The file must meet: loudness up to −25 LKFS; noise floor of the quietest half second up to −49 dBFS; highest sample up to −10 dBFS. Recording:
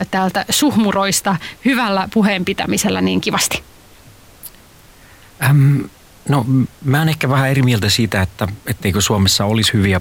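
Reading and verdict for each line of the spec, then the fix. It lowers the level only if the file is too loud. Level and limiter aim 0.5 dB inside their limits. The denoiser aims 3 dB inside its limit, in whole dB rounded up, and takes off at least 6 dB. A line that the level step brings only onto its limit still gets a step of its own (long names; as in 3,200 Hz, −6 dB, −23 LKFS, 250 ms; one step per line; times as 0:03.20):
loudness −15.5 LKFS: out of spec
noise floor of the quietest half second −44 dBFS: out of spec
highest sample −5.0 dBFS: out of spec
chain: level −10 dB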